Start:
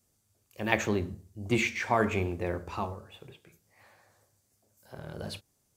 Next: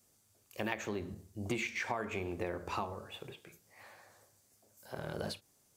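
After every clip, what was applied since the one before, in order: bass shelf 160 Hz -9 dB; compression 10:1, threshold -37 dBFS, peak gain reduction 17.5 dB; endings held to a fixed fall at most 300 dB/s; trim +4 dB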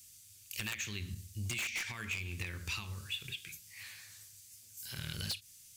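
FFT filter 100 Hz 0 dB, 670 Hz -28 dB, 2.6 kHz +6 dB; wavefolder -31.5 dBFS; compression 6:1, threshold -43 dBFS, peak gain reduction 8 dB; trim +8 dB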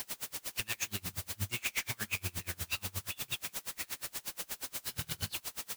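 in parallel at +1 dB: peak limiter -32.5 dBFS, peak gain reduction 8.5 dB; on the sum: word length cut 6-bit, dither triangular; logarithmic tremolo 8.4 Hz, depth 31 dB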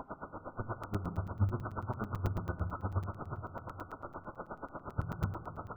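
brick-wall FIR low-pass 1.5 kHz; on a send at -10 dB: reverberation RT60 1.9 s, pre-delay 3 ms; on the sum: crackling interface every 0.11 s, samples 256, zero, from 0.83 s; trim +8 dB

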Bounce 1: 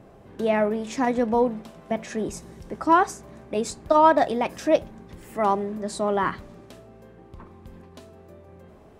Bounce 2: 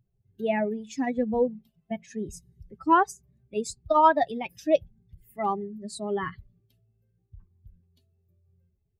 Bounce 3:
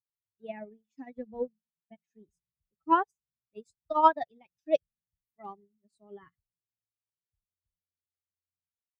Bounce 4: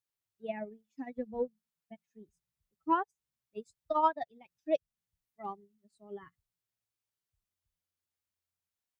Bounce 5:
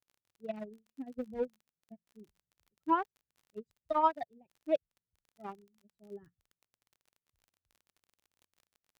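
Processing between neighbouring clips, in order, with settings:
expander on every frequency bin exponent 2; band-stop 5.6 kHz, Q 17
upward expansion 2.5:1, over -41 dBFS
compression 2:1, threshold -34 dBFS, peak gain reduction 11 dB; trim +3 dB
local Wiener filter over 41 samples; crackle 32 per s -51 dBFS

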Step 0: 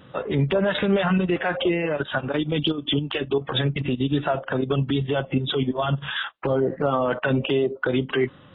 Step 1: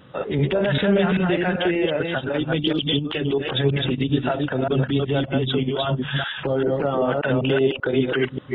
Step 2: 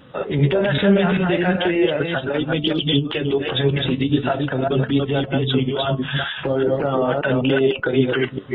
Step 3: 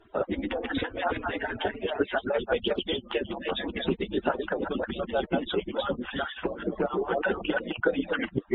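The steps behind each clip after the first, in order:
chunks repeated in reverse 195 ms, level -2 dB; dynamic bell 1.1 kHz, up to -7 dB, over -43 dBFS, Q 4
de-hum 218 Hz, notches 6; flange 0.4 Hz, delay 3.4 ms, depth 9.6 ms, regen +67%; trim +6.5 dB
harmonic-percussive separation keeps percussive; low-pass 1.1 kHz 6 dB/octave

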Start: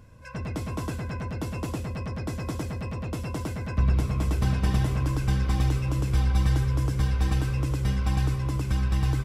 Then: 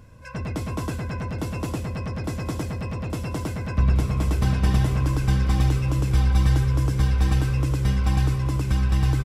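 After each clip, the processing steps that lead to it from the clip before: delay 826 ms -17.5 dB; trim +3 dB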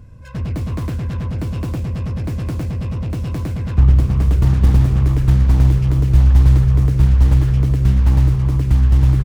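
self-modulated delay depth 0.95 ms; bass shelf 250 Hz +12 dB; trim -2 dB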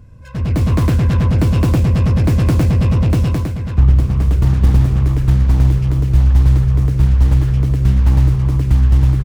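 level rider gain up to 11.5 dB; trim -1 dB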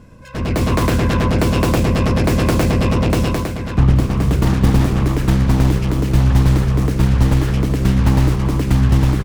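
spectral peaks clipped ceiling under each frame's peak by 15 dB; trim -2 dB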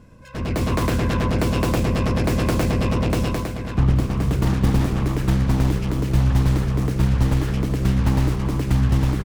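echo from a far wall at 89 m, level -18 dB; trim -5 dB

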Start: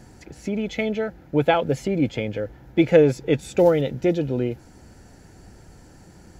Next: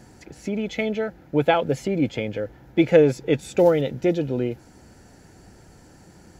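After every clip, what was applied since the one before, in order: bass shelf 74 Hz -7.5 dB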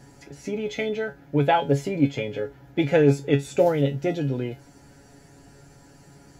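feedback comb 140 Hz, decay 0.19 s, harmonics all, mix 90%; trim +7.5 dB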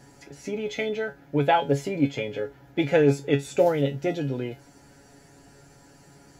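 bass shelf 230 Hz -5 dB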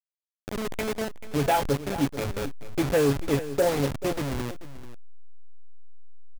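send-on-delta sampling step -23 dBFS; delay 437 ms -15.5 dB; saturation -14.5 dBFS, distortion -16 dB

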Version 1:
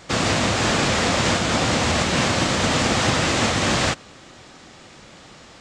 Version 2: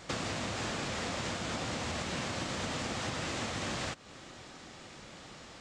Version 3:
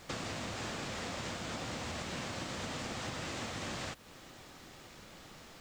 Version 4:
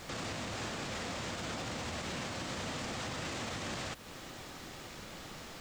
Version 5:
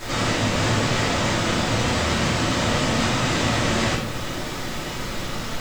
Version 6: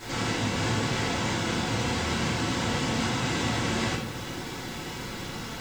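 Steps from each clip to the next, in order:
compression 6:1, threshold -29 dBFS, peak gain reduction 13 dB; trim -5 dB
added noise pink -57 dBFS; trim -4 dB
peak limiter -36.5 dBFS, peak gain reduction 9.5 dB; trim +6 dB
simulated room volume 170 m³, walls mixed, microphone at 2.8 m; trim +7.5 dB
comb of notches 610 Hz; trim -5 dB

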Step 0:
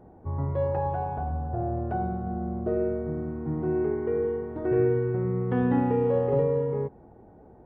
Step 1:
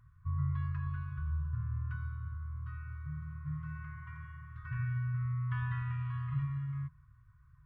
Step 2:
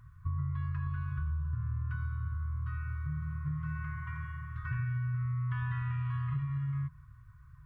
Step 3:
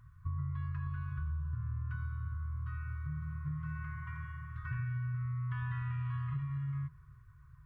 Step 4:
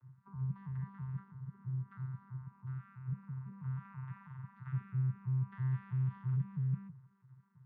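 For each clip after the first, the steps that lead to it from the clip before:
FFT band-reject 160–990 Hz; trim -3 dB
compression, threshold -38 dBFS, peak gain reduction 9.5 dB; trim +7 dB
tape echo 344 ms, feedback 68%, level -23.5 dB; trim -3 dB
vocoder on a broken chord bare fifth, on C3, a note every 164 ms; trim +1.5 dB

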